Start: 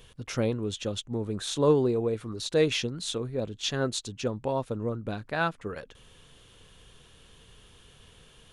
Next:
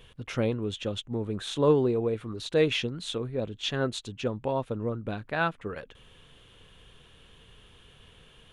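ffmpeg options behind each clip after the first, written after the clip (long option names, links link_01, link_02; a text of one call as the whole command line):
ffmpeg -i in.wav -af "highshelf=frequency=4000:width_type=q:width=1.5:gain=-6" out.wav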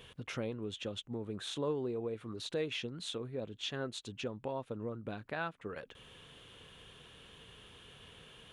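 ffmpeg -i in.wav -af "highpass=frequency=120:poles=1,acompressor=threshold=-45dB:ratio=2,volume=1dB" out.wav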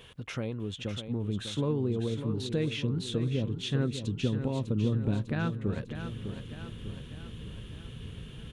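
ffmpeg -i in.wav -filter_complex "[0:a]asubboost=boost=8:cutoff=250,asplit=2[link_01][link_02];[link_02]aecho=0:1:600|1200|1800|2400|3000|3600|4200:0.355|0.199|0.111|0.0623|0.0349|0.0195|0.0109[link_03];[link_01][link_03]amix=inputs=2:normalize=0,volume=2.5dB" out.wav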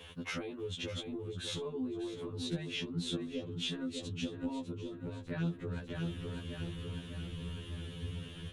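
ffmpeg -i in.wav -af "acompressor=threshold=-33dB:ratio=10,afftfilt=real='re*2*eq(mod(b,4),0)':imag='im*2*eq(mod(b,4),0)':win_size=2048:overlap=0.75,volume=3.5dB" out.wav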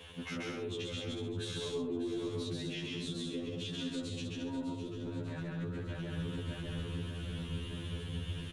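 ffmpeg -i in.wav -filter_complex "[0:a]alimiter=level_in=9.5dB:limit=-24dB:level=0:latency=1:release=127,volume=-9.5dB,asplit=2[link_01][link_02];[link_02]aecho=0:1:134.1|201.2|265.3:0.891|0.562|0.282[link_03];[link_01][link_03]amix=inputs=2:normalize=0" out.wav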